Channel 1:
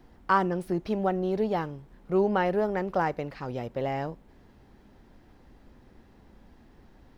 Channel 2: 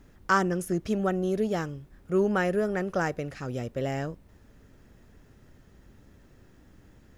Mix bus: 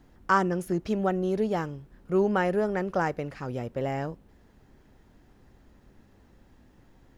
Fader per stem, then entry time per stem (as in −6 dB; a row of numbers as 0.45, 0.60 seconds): −4.5, −6.0 decibels; 0.00, 0.00 seconds